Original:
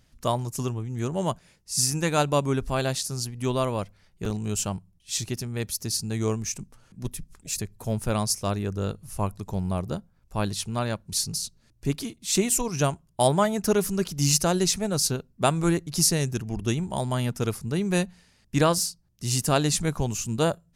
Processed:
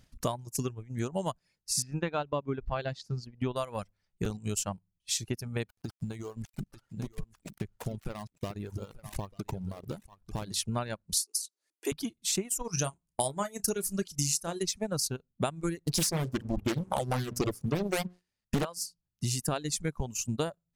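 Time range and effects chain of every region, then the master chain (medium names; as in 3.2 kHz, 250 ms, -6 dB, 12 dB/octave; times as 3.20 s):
1.82–3.56 s: distance through air 210 m + band-stop 5.8 kHz, Q 18
5.66–10.54 s: dead-time distortion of 0.16 ms + compression 12:1, threshold -31 dBFS + delay 892 ms -9 dB
11.17–11.92 s: steep high-pass 310 Hz 48 dB/octave + peaking EQ 10 kHz +11 dB 1.4 oct
12.64–14.63 s: peaking EQ 8.8 kHz +9 dB 1.3 oct + doubling 30 ms -10 dB
15.84–18.65 s: hum notches 60/120/180/240/300/360/420/480 Hz + waveshaping leveller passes 3 + loudspeaker Doppler distortion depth 0.92 ms
whole clip: reverb removal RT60 1.6 s; transient shaper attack +5 dB, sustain -8 dB; compression 6:1, threshold -28 dBFS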